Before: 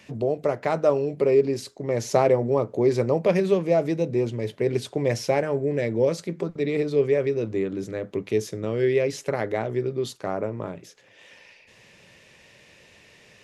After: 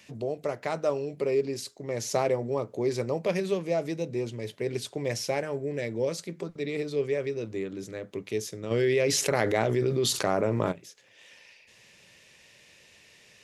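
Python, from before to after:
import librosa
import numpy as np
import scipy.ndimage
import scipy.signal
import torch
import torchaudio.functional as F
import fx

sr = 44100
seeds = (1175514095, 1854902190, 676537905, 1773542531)

y = fx.high_shelf(x, sr, hz=2500.0, db=9.5)
y = fx.env_flatten(y, sr, amount_pct=70, at=(8.7, 10.71), fade=0.02)
y = F.gain(torch.from_numpy(y), -7.5).numpy()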